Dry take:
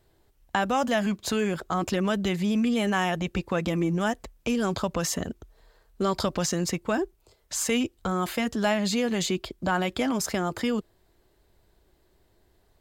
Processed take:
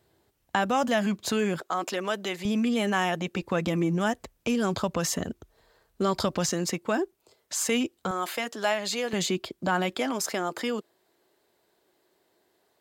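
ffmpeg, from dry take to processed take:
ffmpeg -i in.wav -af "asetnsamples=nb_out_samples=441:pad=0,asendcmd='1.61 highpass f 410;2.45 highpass f 180;3.42 highpass f 78;6.49 highpass f 180;8.11 highpass f 440;9.13 highpass f 140;9.95 highpass f 300',highpass=100" out.wav

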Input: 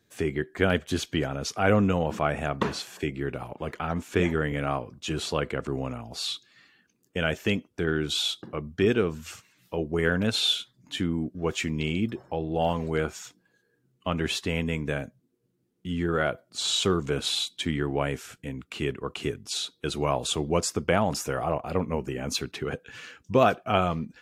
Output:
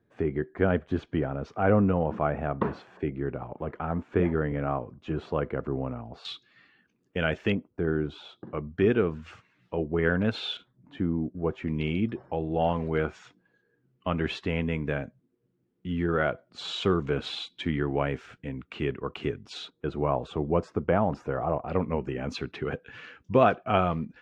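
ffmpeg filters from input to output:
ffmpeg -i in.wav -af "asetnsamples=nb_out_samples=441:pad=0,asendcmd='6.25 lowpass f 2800;7.52 lowpass f 1100;8.47 lowpass f 2100;10.57 lowpass f 1100;11.68 lowpass f 2500;19.7 lowpass f 1300;21.68 lowpass f 2600',lowpass=1300" out.wav

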